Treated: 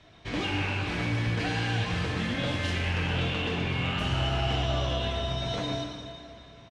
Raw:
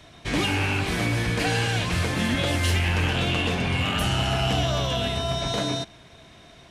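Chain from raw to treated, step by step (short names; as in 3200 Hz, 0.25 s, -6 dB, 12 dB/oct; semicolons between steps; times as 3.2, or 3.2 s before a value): LPF 5000 Hz 12 dB/oct; outdoor echo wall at 200 m, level -21 dB; plate-style reverb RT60 2.3 s, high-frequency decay 0.95×, pre-delay 0 ms, DRR 2 dB; gain -7 dB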